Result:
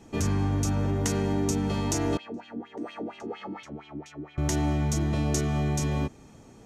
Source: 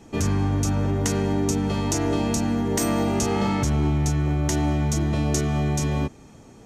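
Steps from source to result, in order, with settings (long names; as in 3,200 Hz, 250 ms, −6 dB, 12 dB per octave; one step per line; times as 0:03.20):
0:02.17–0:04.38: LFO wah 4.3 Hz 270–3,300 Hz, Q 3.9
level −3.5 dB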